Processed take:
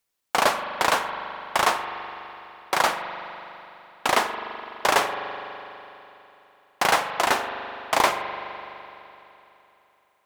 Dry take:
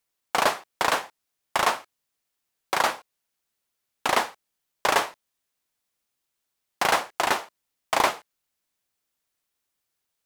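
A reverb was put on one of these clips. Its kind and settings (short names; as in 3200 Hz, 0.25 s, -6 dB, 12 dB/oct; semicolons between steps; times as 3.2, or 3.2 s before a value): spring tank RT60 3.2 s, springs 41 ms, chirp 30 ms, DRR 7 dB; gain +1.5 dB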